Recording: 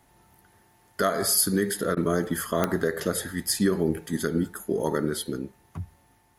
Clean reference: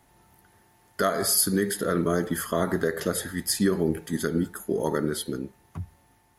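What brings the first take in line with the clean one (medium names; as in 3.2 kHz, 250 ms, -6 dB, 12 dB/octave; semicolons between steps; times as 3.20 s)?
de-click; interpolate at 1.95 s, 17 ms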